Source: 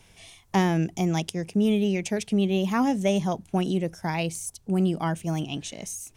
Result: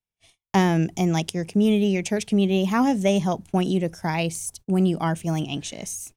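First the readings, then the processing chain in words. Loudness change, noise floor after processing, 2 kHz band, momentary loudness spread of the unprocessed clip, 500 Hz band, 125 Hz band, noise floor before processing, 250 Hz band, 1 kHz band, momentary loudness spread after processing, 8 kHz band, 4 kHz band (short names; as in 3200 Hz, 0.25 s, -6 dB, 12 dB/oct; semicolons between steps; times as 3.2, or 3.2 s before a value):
+3.0 dB, under -85 dBFS, +3.0 dB, 7 LU, +3.0 dB, +3.0 dB, -58 dBFS, +3.0 dB, +3.0 dB, 7 LU, +3.0 dB, +3.0 dB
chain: gate -45 dBFS, range -42 dB; gain +3 dB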